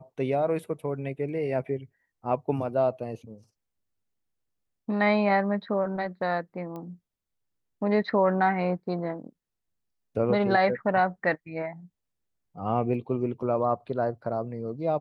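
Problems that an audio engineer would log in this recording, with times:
6.76 pop -27 dBFS

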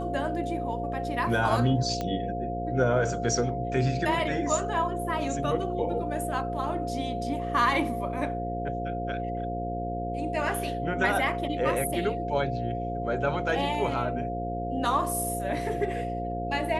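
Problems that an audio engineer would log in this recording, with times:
buzz 60 Hz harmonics 9 -34 dBFS
tone 700 Hz -32 dBFS
2.01 pop -17 dBFS

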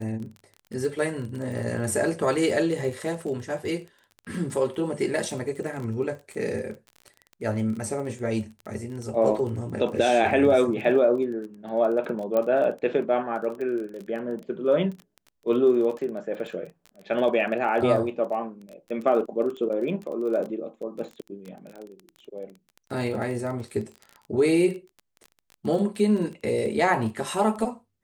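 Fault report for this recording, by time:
crackle 23/s -33 dBFS
12.37 pop -14 dBFS

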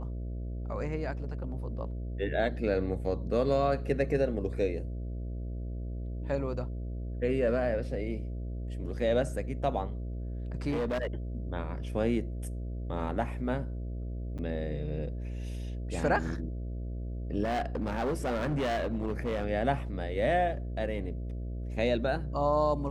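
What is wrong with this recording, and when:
buzz 60 Hz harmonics 11 -36 dBFS
10.7–11.07 clipped -27 dBFS
14.38–14.39 gap 7.5 ms
17.43–19.44 clipped -27 dBFS

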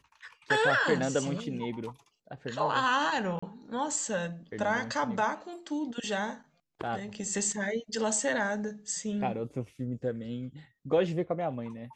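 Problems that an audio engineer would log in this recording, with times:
3.39–3.42 gap 35 ms

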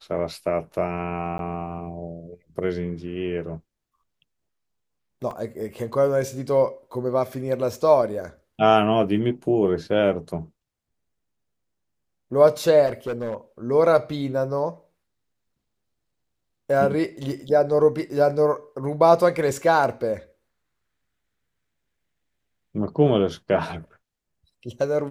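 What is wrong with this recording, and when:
1.38–1.39 gap 12 ms
5.31 gap 3.1 ms
12.86–13.35 clipped -23.5 dBFS

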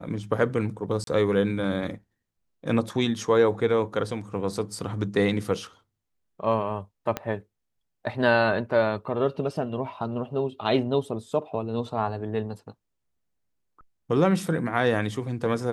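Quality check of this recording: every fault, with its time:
1.04–1.07 gap 32 ms
7.17 pop -13 dBFS

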